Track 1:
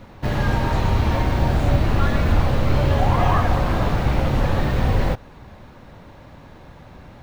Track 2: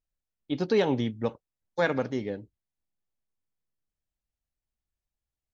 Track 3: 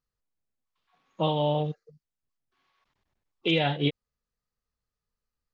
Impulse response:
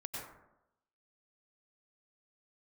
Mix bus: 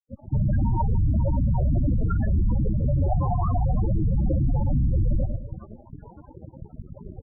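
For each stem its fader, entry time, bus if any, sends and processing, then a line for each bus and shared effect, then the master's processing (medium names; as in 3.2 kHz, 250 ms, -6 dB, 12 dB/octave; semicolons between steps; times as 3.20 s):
+3.0 dB, 0.10 s, no send, echo send -12.5 dB, fuzz box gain 31 dB, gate -38 dBFS
-18.0 dB, 0.00 s, no send, no echo send, high-pass 270 Hz
-4.0 dB, 0.45 s, no send, no echo send, spectral levelling over time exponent 0.6; treble shelf 3.3 kHz -10 dB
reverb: none
echo: feedback delay 107 ms, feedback 39%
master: loudest bins only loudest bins 8; peak limiter -16.5 dBFS, peak gain reduction 11 dB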